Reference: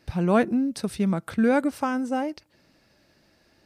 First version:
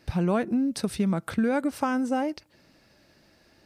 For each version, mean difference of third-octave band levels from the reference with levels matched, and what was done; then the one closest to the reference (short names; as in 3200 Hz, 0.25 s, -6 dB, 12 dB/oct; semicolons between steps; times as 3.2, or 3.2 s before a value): 2.5 dB: compressor 6:1, threshold -23 dBFS, peak gain reduction 8.5 dB; gain +2 dB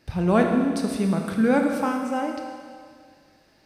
6.5 dB: Schroeder reverb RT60 2 s, combs from 25 ms, DRR 2.5 dB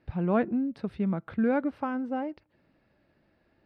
4.0 dB: air absorption 410 m; gain -4 dB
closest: first